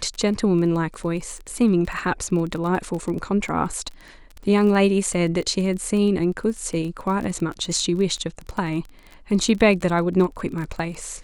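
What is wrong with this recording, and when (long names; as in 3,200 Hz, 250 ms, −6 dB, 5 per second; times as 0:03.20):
surface crackle 24 per second −28 dBFS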